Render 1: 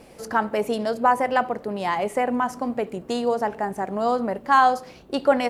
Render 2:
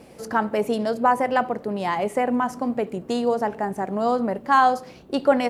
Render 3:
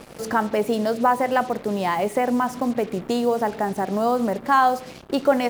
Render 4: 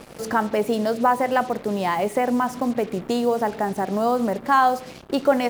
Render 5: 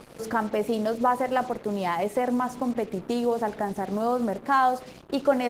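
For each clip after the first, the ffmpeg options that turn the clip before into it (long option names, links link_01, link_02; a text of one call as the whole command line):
ffmpeg -i in.wav -af "highpass=frequency=140:poles=1,lowshelf=frequency=290:gain=8,volume=-1dB" out.wav
ffmpeg -i in.wav -filter_complex "[0:a]asplit=2[link_01][link_02];[link_02]acompressor=threshold=-28dB:ratio=6,volume=2.5dB[link_03];[link_01][link_03]amix=inputs=2:normalize=0,acrusher=bits=5:mix=0:aa=0.5,volume=-2.5dB" out.wav
ffmpeg -i in.wav -af anull out.wav
ffmpeg -i in.wav -af "aresample=32000,aresample=44100,volume=-3.5dB" -ar 48000 -c:a libopus -b:a 16k out.opus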